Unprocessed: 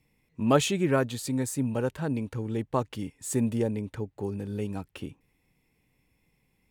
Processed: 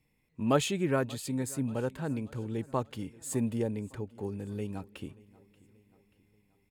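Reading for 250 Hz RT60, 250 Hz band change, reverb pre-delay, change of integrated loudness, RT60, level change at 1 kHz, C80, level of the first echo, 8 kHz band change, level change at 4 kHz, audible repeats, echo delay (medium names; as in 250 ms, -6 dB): no reverb, -4.0 dB, no reverb, -4.0 dB, no reverb, -4.0 dB, no reverb, -22.5 dB, -4.0 dB, -4.0 dB, 3, 583 ms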